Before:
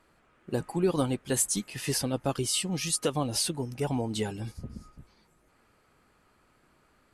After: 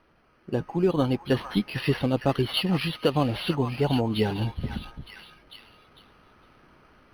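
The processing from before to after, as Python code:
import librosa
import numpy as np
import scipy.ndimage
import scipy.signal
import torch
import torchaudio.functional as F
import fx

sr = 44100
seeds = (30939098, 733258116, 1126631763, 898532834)

p1 = fx.air_absorb(x, sr, metres=250.0)
p2 = fx.rider(p1, sr, range_db=3, speed_s=0.5)
p3 = fx.peak_eq(p2, sr, hz=3100.0, db=9.5, octaves=0.61)
p4 = fx.notch(p3, sr, hz=4900.0, q=6.8)
p5 = p4 + fx.echo_stepped(p4, sr, ms=454, hz=1200.0, octaves=0.7, feedback_pct=70, wet_db=-5, dry=0)
p6 = np.interp(np.arange(len(p5)), np.arange(len(p5))[::6], p5[::6])
y = F.gain(torch.from_numpy(p6), 6.5).numpy()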